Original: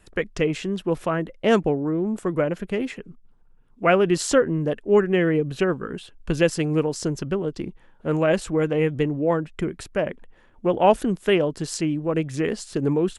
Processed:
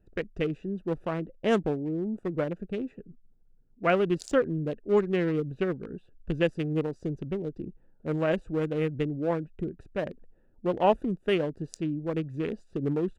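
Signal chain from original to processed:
adaptive Wiener filter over 41 samples
level −5.5 dB

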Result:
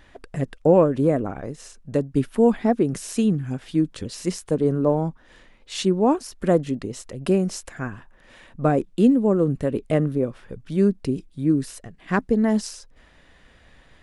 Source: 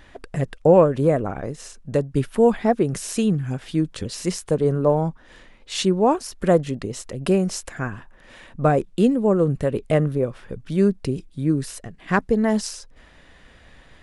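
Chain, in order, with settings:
dynamic equaliser 270 Hz, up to +7 dB, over −33 dBFS, Q 1.8
level −3.5 dB

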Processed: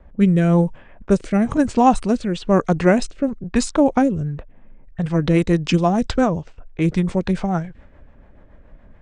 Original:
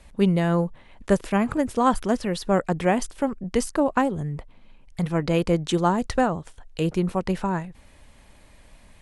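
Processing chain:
low-pass that shuts in the quiet parts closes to 1,300 Hz, open at −19 dBFS
formants moved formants −3 semitones
rotating-speaker cabinet horn 1 Hz, later 7 Hz, at 0:04.01
level +7 dB

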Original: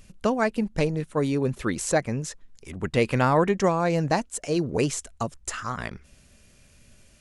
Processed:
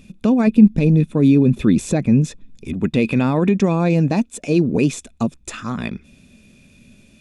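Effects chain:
0:00.47–0:02.73: low-shelf EQ 270 Hz +8.5 dB
brickwall limiter −15.5 dBFS, peak gain reduction 9.5 dB
hollow resonant body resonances 220/2,500/3,500 Hz, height 16 dB, ringing for 20 ms
level −1 dB

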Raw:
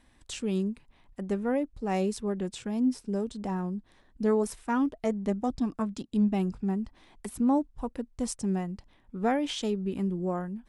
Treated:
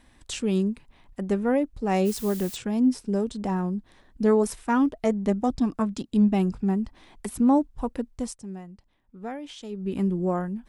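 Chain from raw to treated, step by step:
0:02.05–0:02.55: background noise blue −46 dBFS
0:08.08–0:09.99: duck −13.5 dB, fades 0.30 s
level +5 dB

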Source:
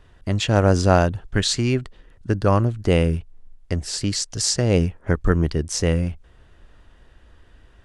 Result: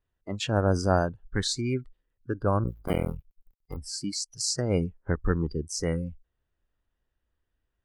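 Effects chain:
0:02.64–0:03.77: sub-harmonics by changed cycles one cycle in 2, muted
noise reduction from a noise print of the clip's start 22 dB
level −7 dB

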